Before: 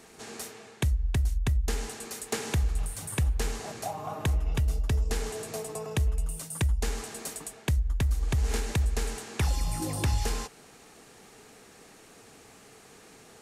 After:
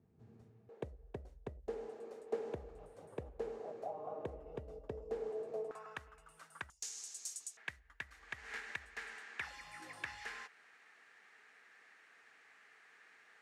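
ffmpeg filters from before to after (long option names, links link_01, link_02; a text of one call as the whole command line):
ffmpeg -i in.wav -af "asetnsamples=nb_out_samples=441:pad=0,asendcmd='0.69 bandpass f 500;5.71 bandpass f 1400;6.7 bandpass f 6400;7.57 bandpass f 1800',bandpass=frequency=110:width_type=q:width=3.3:csg=0" out.wav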